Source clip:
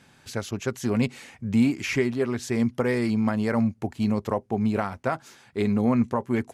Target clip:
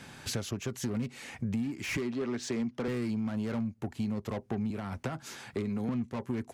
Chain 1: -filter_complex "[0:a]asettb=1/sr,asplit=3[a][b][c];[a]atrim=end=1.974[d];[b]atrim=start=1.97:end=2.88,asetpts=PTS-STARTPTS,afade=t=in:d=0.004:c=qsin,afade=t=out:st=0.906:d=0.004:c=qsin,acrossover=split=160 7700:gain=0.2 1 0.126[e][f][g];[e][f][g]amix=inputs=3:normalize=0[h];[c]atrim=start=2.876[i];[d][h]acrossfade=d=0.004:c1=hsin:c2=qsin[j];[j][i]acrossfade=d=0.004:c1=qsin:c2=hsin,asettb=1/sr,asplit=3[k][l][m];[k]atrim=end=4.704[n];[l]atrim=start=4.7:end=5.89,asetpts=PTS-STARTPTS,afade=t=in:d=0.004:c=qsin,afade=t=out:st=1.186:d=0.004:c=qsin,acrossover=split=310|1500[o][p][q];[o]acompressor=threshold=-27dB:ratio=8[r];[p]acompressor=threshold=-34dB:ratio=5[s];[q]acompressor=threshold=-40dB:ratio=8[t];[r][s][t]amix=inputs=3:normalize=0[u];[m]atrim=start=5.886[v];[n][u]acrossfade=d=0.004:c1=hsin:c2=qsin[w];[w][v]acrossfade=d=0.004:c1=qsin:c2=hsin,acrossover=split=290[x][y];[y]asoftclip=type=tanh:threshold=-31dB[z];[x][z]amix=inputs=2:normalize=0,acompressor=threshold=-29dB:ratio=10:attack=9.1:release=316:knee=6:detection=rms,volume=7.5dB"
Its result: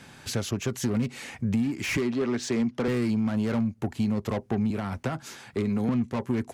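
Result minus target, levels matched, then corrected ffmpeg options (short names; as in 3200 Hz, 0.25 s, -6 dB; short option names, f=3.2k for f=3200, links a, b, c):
compressor: peak gain reduction -6.5 dB
-filter_complex "[0:a]asettb=1/sr,asplit=3[a][b][c];[a]atrim=end=1.974[d];[b]atrim=start=1.97:end=2.88,asetpts=PTS-STARTPTS,afade=t=in:d=0.004:c=qsin,afade=t=out:st=0.906:d=0.004:c=qsin,acrossover=split=160 7700:gain=0.2 1 0.126[e][f][g];[e][f][g]amix=inputs=3:normalize=0[h];[c]atrim=start=2.876[i];[d][h]acrossfade=d=0.004:c1=hsin:c2=qsin[j];[j][i]acrossfade=d=0.004:c1=qsin:c2=hsin,asettb=1/sr,asplit=3[k][l][m];[k]atrim=end=4.704[n];[l]atrim=start=4.7:end=5.89,asetpts=PTS-STARTPTS,afade=t=in:d=0.004:c=qsin,afade=t=out:st=1.186:d=0.004:c=qsin,acrossover=split=310|1500[o][p][q];[o]acompressor=threshold=-27dB:ratio=8[r];[p]acompressor=threshold=-34dB:ratio=5[s];[q]acompressor=threshold=-40dB:ratio=8[t];[r][s][t]amix=inputs=3:normalize=0[u];[m]atrim=start=5.886[v];[n][u]acrossfade=d=0.004:c1=hsin:c2=qsin[w];[w][v]acrossfade=d=0.004:c1=qsin:c2=hsin,acrossover=split=290[x][y];[y]asoftclip=type=tanh:threshold=-31dB[z];[x][z]amix=inputs=2:normalize=0,acompressor=threshold=-36.5dB:ratio=10:attack=9.1:release=316:knee=6:detection=rms,volume=7.5dB"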